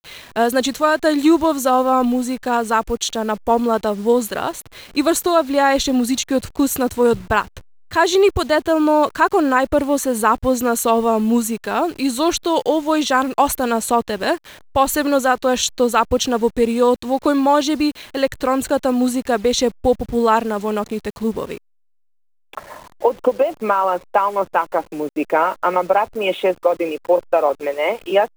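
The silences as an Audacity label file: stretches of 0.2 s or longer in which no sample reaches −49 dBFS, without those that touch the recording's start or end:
21.580000	22.530000	silence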